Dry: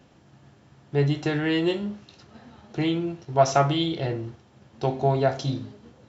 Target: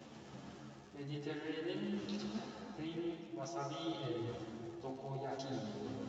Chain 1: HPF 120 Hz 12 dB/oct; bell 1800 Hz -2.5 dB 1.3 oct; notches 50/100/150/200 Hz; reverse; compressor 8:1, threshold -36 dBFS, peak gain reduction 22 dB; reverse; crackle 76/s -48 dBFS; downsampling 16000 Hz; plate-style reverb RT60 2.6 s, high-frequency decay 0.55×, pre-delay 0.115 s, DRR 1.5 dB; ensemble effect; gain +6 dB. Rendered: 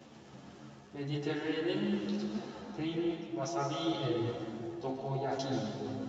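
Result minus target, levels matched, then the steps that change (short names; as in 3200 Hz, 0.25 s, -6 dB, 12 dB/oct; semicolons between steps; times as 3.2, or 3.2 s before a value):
compressor: peak gain reduction -8 dB
change: compressor 8:1, threshold -45 dBFS, peak gain reduction 29.5 dB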